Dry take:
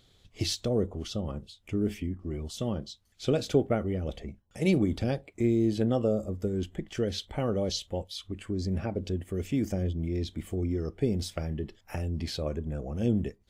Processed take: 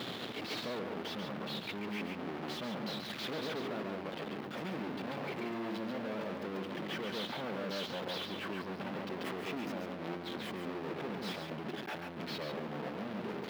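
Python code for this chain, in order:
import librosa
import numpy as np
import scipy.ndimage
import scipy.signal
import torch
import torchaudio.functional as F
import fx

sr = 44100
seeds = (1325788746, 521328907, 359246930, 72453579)

p1 = np.sign(x) * np.sqrt(np.mean(np.square(x)))
p2 = fx.air_absorb(p1, sr, metres=360.0)
p3 = p2 + fx.echo_single(p2, sr, ms=139, db=-3.5, dry=0)
p4 = fx.level_steps(p3, sr, step_db=23)
p5 = scipy.signal.sosfilt(scipy.signal.butter(4, 170.0, 'highpass', fs=sr, output='sos'), p4)
p6 = fx.high_shelf(p5, sr, hz=6400.0, db=11.0)
y = p6 * librosa.db_to_amplitude(9.0)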